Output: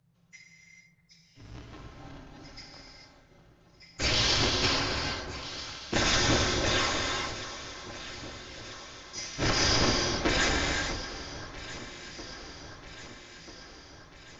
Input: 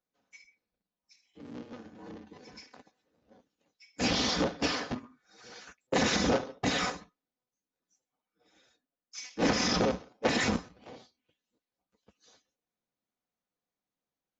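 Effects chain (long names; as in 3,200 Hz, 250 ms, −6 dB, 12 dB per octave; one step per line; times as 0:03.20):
tilt shelving filter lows −3.5 dB
background noise brown −69 dBFS
frequency shifter −180 Hz
delay that swaps between a low-pass and a high-pass 645 ms, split 1,600 Hz, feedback 76%, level −12 dB
reverb whose tail is shaped and stops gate 470 ms flat, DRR −0.5 dB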